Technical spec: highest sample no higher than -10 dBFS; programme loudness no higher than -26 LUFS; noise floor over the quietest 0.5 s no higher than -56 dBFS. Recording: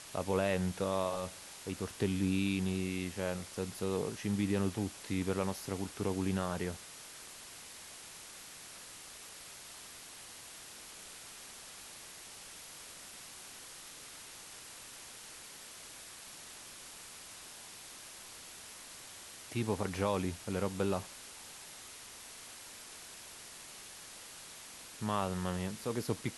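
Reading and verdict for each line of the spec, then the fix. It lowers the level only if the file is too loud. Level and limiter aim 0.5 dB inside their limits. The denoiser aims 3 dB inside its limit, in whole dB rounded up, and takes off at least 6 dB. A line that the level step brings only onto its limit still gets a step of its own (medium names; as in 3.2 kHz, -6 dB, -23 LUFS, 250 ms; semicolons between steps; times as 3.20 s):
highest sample -17.5 dBFS: pass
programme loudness -39.5 LUFS: pass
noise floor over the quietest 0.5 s -51 dBFS: fail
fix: noise reduction 8 dB, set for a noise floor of -51 dBFS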